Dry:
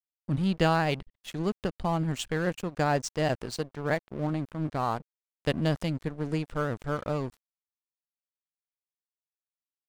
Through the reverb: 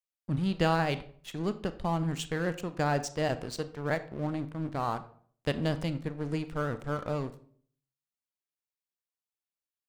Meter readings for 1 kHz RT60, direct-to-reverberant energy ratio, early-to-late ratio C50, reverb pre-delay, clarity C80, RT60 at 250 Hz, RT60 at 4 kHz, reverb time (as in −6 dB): 0.45 s, 11.5 dB, 15.0 dB, 28 ms, 18.0 dB, 0.65 s, 0.35 s, 0.50 s